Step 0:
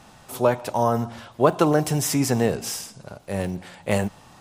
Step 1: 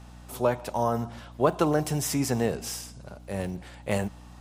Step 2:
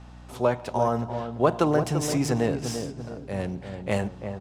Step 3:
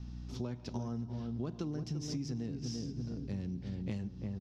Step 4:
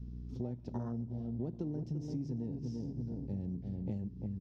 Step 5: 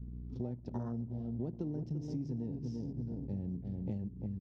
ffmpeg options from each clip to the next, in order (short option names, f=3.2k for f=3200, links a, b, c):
-af "aeval=exprs='val(0)+0.00891*(sin(2*PI*60*n/s)+sin(2*PI*2*60*n/s)/2+sin(2*PI*3*60*n/s)/3+sin(2*PI*4*60*n/s)/4+sin(2*PI*5*60*n/s)/5)':c=same,volume=-5dB"
-filter_complex "[0:a]adynamicsmooth=sensitivity=6:basefreq=6.3k,asplit=2[a][b];[b]adelay=341,lowpass=f=940:p=1,volume=-7dB,asplit=2[c][d];[d]adelay=341,lowpass=f=940:p=1,volume=0.49,asplit=2[e][f];[f]adelay=341,lowpass=f=940:p=1,volume=0.49,asplit=2[g][h];[h]adelay=341,lowpass=f=940:p=1,volume=0.49,asplit=2[i][j];[j]adelay=341,lowpass=f=940:p=1,volume=0.49,asplit=2[k][l];[l]adelay=341,lowpass=f=940:p=1,volume=0.49[m];[a][c][e][g][i][k][m]amix=inputs=7:normalize=0,volume=1.5dB"
-af "firequalizer=gain_entry='entry(250,0);entry(580,-19);entry(5500,0);entry(8400,-22)':delay=0.05:min_phase=1,acompressor=threshold=-36dB:ratio=10,volume=1.5dB"
-af "afwtdn=0.00708"
-af "anlmdn=0.0001"